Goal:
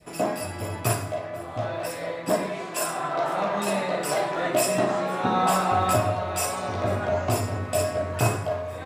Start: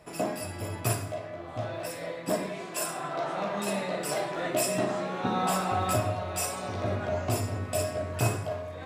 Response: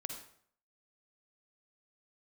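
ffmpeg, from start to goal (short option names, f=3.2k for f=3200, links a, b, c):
-filter_complex "[0:a]asplit=2[a][b];[b]aecho=0:1:498:0.0668[c];[a][c]amix=inputs=2:normalize=0,adynamicequalizer=threshold=0.0112:dfrequency=1000:dqfactor=0.71:tfrequency=1000:tqfactor=0.71:attack=5:release=100:ratio=0.375:range=2:mode=boostabove:tftype=bell,volume=3dB"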